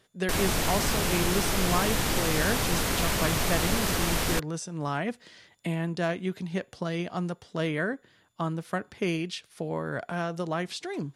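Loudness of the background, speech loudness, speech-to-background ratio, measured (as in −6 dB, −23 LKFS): −27.0 LKFS, −32.0 LKFS, −5.0 dB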